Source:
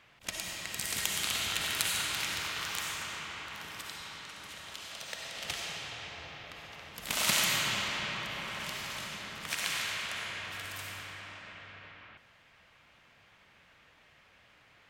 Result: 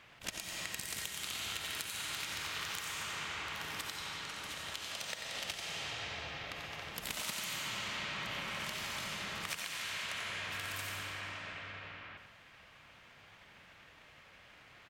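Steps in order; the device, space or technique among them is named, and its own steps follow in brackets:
drum-bus smash (transient designer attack +6 dB, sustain +1 dB; downward compressor 8 to 1, threshold −39 dBFS, peak gain reduction 19 dB; soft clipping −25 dBFS, distortion −23 dB)
single-tap delay 90 ms −7 dB
level +2 dB

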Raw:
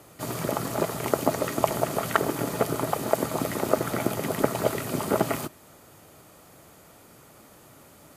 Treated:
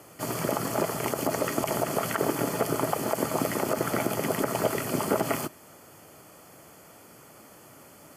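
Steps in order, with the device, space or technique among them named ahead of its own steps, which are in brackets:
PA system with an anti-feedback notch (high-pass filter 130 Hz 6 dB per octave; Butterworth band-reject 3,800 Hz, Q 6.5; brickwall limiter −14.5 dBFS, peak gain reduction 11 dB)
level +1.5 dB

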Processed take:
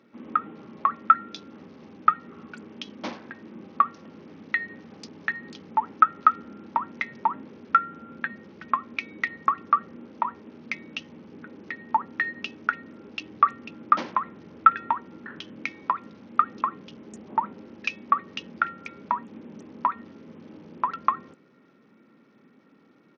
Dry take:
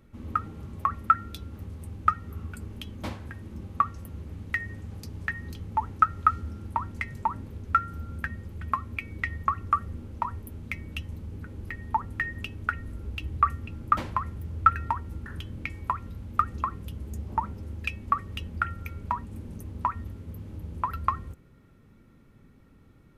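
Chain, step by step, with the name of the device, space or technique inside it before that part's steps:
Bluetooth headset (high-pass filter 210 Hz 24 dB per octave; downsampling to 16,000 Hz; level +3.5 dB; SBC 64 kbit/s 48,000 Hz)

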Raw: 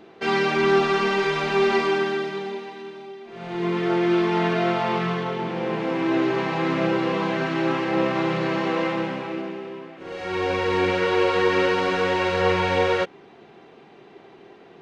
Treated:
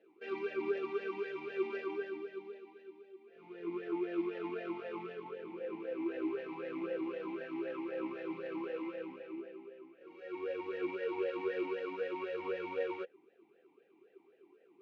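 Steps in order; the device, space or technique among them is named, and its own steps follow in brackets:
talk box (tube saturation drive 13 dB, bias 0.75; formant filter swept between two vowels e-u 3.9 Hz)
level −4 dB

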